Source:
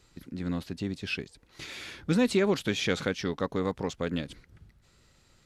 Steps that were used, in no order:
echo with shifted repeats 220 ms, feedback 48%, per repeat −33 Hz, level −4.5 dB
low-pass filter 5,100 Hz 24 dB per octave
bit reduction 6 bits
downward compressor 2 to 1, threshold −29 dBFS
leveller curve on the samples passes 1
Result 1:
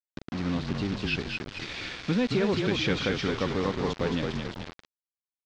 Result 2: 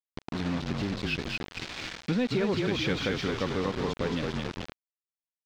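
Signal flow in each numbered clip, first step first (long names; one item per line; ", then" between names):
downward compressor, then echo with shifted repeats, then leveller curve on the samples, then bit reduction, then low-pass filter
echo with shifted repeats, then bit reduction, then low-pass filter, then leveller curve on the samples, then downward compressor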